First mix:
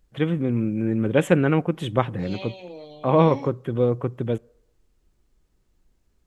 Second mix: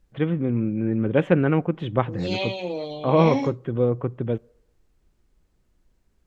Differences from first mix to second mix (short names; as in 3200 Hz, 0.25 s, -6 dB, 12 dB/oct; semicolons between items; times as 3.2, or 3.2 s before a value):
first voice: add air absorption 260 m; second voice +10.0 dB